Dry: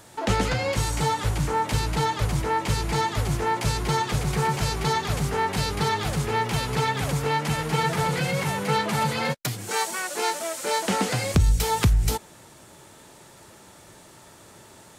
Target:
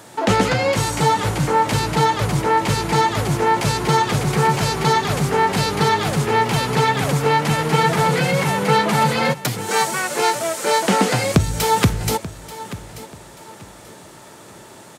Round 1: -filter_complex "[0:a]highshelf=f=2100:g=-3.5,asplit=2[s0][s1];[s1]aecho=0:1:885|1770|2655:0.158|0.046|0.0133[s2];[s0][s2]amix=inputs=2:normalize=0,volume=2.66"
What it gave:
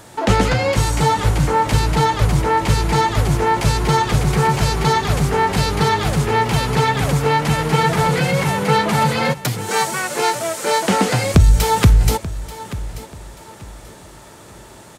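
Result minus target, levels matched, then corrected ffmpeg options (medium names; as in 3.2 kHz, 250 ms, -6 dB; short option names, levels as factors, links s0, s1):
125 Hz band +2.5 dB
-filter_complex "[0:a]highpass=130,highshelf=f=2100:g=-3.5,asplit=2[s0][s1];[s1]aecho=0:1:885|1770|2655:0.158|0.046|0.0133[s2];[s0][s2]amix=inputs=2:normalize=0,volume=2.66"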